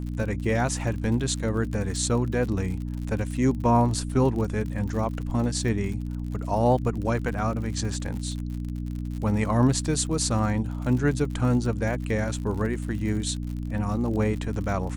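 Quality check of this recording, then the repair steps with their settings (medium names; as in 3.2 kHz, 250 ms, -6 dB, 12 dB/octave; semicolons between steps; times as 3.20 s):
crackle 55 per s -33 dBFS
hum 60 Hz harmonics 5 -31 dBFS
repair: de-click; de-hum 60 Hz, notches 5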